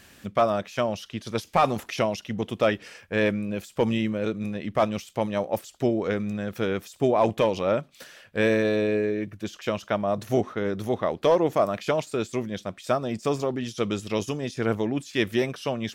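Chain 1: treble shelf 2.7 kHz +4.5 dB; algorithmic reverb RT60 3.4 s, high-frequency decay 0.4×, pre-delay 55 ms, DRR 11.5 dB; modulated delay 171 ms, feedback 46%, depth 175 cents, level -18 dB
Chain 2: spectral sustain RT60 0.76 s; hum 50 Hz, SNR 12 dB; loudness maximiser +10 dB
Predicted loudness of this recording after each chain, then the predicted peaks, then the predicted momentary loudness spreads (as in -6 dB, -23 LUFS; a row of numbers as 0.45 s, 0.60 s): -25.5 LUFS, -14.5 LUFS; -9.0 dBFS, -1.0 dBFS; 8 LU, 7 LU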